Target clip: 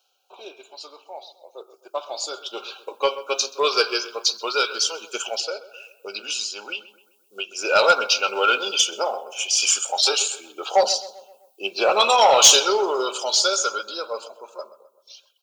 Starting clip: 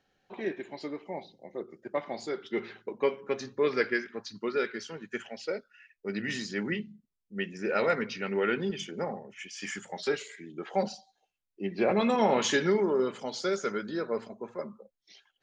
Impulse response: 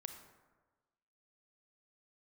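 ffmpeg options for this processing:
-filter_complex "[0:a]highpass=f=520:w=0.5412,highpass=f=520:w=1.3066,dynaudnorm=f=780:g=7:m=5.31,asuperstop=centerf=1900:order=8:qfactor=2,aemphasis=mode=production:type=75fm,asettb=1/sr,asplit=3[s0][s1][s2];[s0]atrim=end=5.404[s3];[s1]atrim=start=5.4:end=7.58,asetpts=PTS-STARTPTS,afade=t=in:d=0.004:c=qsin,afade=t=out:st=2.176:d=0.004:c=qsin,acompressor=threshold=0.0141:ratio=2[s4];[s2]atrim=start=7.576[s5];[s3][s4]acrossfade=d=0.004:c1=hsin:c2=qsin[s6];[s6][s5]acrossfade=d=0.004:c1=qsin:c2=hsin,aphaser=in_gain=1:out_gain=1:delay=3.7:decay=0.29:speed=0.18:type=sinusoidal,asoftclip=type=tanh:threshold=0.447,equalizer=f=3900:t=o:w=2.7:g=3.5,asplit=2[s7][s8];[s8]adelay=129,lowpass=f=2200:p=1,volume=0.178,asplit=2[s9][s10];[s10]adelay=129,lowpass=f=2200:p=1,volume=0.52,asplit=2[s11][s12];[s12]adelay=129,lowpass=f=2200:p=1,volume=0.52,asplit=2[s13][s14];[s14]adelay=129,lowpass=f=2200:p=1,volume=0.52,asplit=2[s15][s16];[s16]adelay=129,lowpass=f=2200:p=1,volume=0.52[s17];[s7][s9][s11][s13][s15][s17]amix=inputs=6:normalize=0"

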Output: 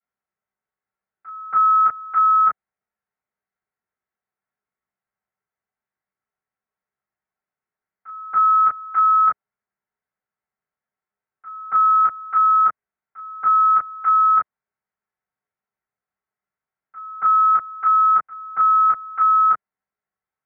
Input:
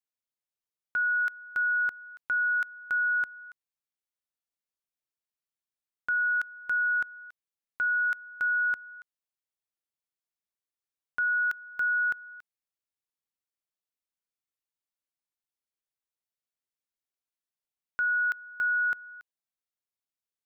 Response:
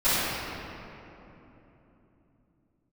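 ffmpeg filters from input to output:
-filter_complex "[0:a]areverse[s0];[1:a]atrim=start_sample=2205,atrim=end_sample=3528,asetrate=70560,aresample=44100[s1];[s0][s1]afir=irnorm=-1:irlink=0,highpass=f=240:t=q:w=0.5412,highpass=f=240:t=q:w=1.307,lowpass=f=2200:t=q:w=0.5176,lowpass=f=2200:t=q:w=0.7071,lowpass=f=2200:t=q:w=1.932,afreqshift=-170,volume=1.41"

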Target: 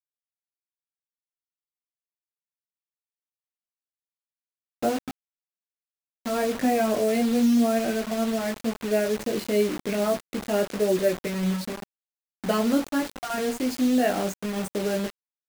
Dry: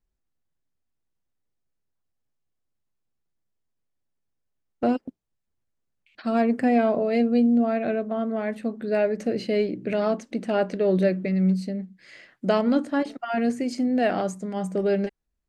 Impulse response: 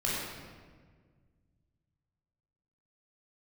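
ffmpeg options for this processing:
-af "flanger=delay=17.5:depth=2.3:speed=0.25,acrusher=bits=5:mix=0:aa=0.000001,volume=1.26"

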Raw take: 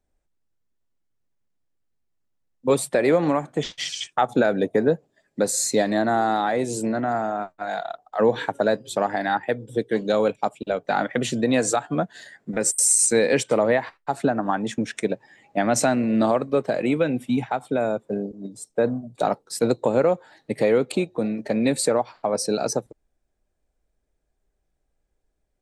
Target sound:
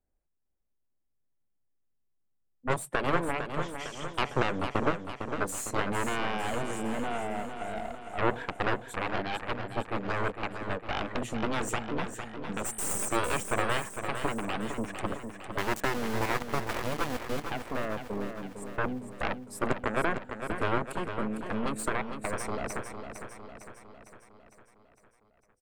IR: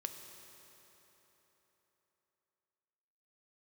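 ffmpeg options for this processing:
-filter_complex "[0:a]equalizer=f=4400:t=o:w=1.2:g=-14.5,asettb=1/sr,asplit=3[s0][s1][s2];[s0]atrim=end=15.584[s3];[s1]atrim=start=15.58:end=17.44,asetpts=PTS-STARTPTS,afade=t=in:d=0.004:c=qsin,afade=t=out:st=1.856:d=0.004:c=qsin,aeval=exprs='val(0)*gte(abs(val(0)),0.075)':c=same[s4];[s2]atrim=start=17.436[s5];[s3][s4]acrossfade=d=0.004:c1=hsin:c2=qsin[s6];[s6][s5]acrossfade=d=0.004:c1=qsin:c2=hsin,aeval=exprs='0.422*(cos(1*acos(clip(val(0)/0.422,-1,1)))-cos(1*PI/2))+0.0596*(cos(2*acos(clip(val(0)/0.422,-1,1)))-cos(2*PI/2))+0.168*(cos(3*acos(clip(val(0)/0.422,-1,1)))-cos(3*PI/2))+0.0299*(cos(6*acos(clip(val(0)/0.422,-1,1)))-cos(6*PI/2))+0.0335*(cos(7*acos(clip(val(0)/0.422,-1,1)))-cos(7*PI/2))':c=same,aecho=1:1:455|910|1365|1820|2275|2730|3185:0.398|0.223|0.125|0.0699|0.0392|0.0219|0.0123,volume=0.631"

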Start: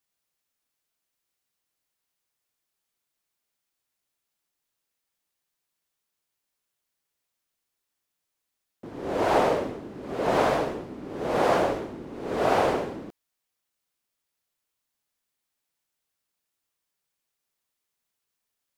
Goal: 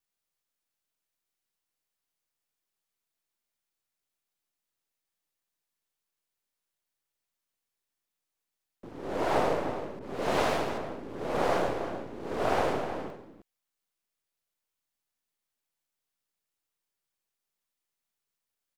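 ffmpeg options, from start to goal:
-filter_complex "[0:a]aeval=exprs='if(lt(val(0),0),0.447*val(0),val(0))':c=same,asplit=2[s0][s1];[s1]adelay=314.9,volume=0.355,highshelf=f=4000:g=-7.08[s2];[s0][s2]amix=inputs=2:normalize=0,asettb=1/sr,asplit=3[s3][s4][s5];[s3]atrim=end=9.994[s6];[s4]atrim=start=9.99:end=10.78,asetpts=PTS-STARTPTS,afade=t=in:d=0.004:c=qsin,afade=t=out:st=0.786:d=0.004:c=qsin,adynamicequalizer=threshold=0.00891:dfrequency=1900:dqfactor=0.7:tfrequency=1900:tqfactor=0.7:attack=5:release=100:ratio=0.375:range=2.5:mode=boostabove:tftype=highshelf[s7];[s5]atrim=start=10.776[s8];[s6][s7]acrossfade=d=0.004:c1=hsin:c2=qsin[s9];[s9][s8]acrossfade=d=0.004:c1=qsin:c2=hsin,volume=0.75"

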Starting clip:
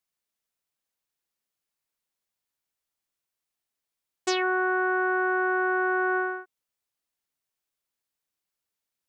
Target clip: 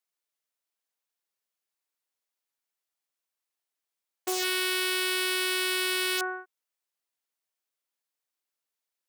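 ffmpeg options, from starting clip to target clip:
-af "aeval=exprs='(mod(7.94*val(0)+1,2)-1)/7.94':c=same,highpass=340,volume=0.794"

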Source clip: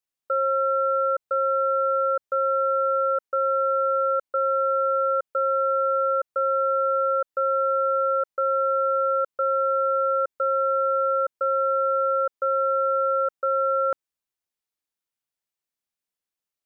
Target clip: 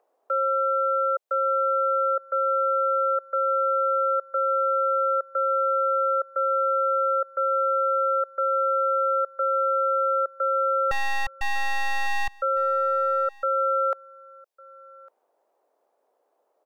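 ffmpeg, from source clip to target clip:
-filter_complex "[0:a]highpass=f=500:w=0.5412,highpass=f=500:w=1.3066,acrossover=split=720|740[s0][s1][s2];[s0]acompressor=mode=upward:threshold=0.00891:ratio=2.5[s3];[s3][s1][s2]amix=inputs=3:normalize=0,asettb=1/sr,asplit=3[s4][s5][s6];[s4]atrim=end=10.914[s7];[s5]atrim=start=10.91:end=12.32,asetpts=PTS-STARTPTS,afade=t=in:d=0.004:c=qsin,afade=t=out:st=1.406:d=0.004:c=qsin,aeval=exprs='abs(val(0))':c=same[s8];[s6]atrim=start=12.316[s9];[s7][s8]acrossfade=d=0.004:c1=hsin:c2=qsin[s10];[s10][s9]acrossfade=d=0.004:c1=qsin:c2=hsin,aecho=1:1:1154:0.0631"

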